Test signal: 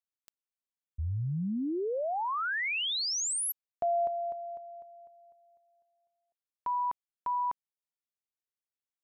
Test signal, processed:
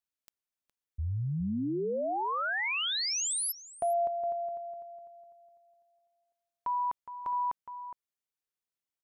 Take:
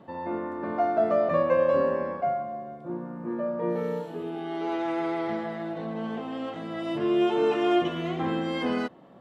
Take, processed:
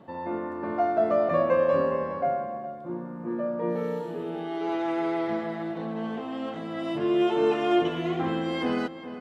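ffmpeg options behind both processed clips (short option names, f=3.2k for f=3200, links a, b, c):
-filter_complex "[0:a]asplit=2[a][b];[b]adelay=414,volume=-11dB,highshelf=f=4k:g=-9.32[c];[a][c]amix=inputs=2:normalize=0"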